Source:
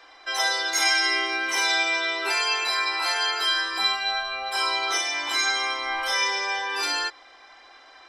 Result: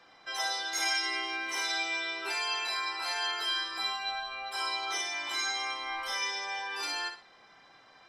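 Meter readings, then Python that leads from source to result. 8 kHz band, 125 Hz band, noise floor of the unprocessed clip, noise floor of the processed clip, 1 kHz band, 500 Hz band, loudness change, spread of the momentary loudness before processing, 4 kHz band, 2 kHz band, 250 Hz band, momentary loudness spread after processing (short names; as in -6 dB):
-8.0 dB, n/a, -51 dBFS, -58 dBFS, -8.0 dB, -10.5 dB, -8.5 dB, 5 LU, -8.0 dB, -9.0 dB, -8.5 dB, 5 LU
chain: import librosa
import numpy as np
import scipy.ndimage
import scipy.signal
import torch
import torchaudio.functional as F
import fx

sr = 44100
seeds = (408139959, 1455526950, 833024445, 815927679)

p1 = fx.dmg_noise_band(x, sr, seeds[0], low_hz=110.0, high_hz=1400.0, level_db=-59.0)
p2 = p1 + fx.echo_feedback(p1, sr, ms=60, feedback_pct=27, wet_db=-8.5, dry=0)
y = p2 * 10.0 ** (-9.0 / 20.0)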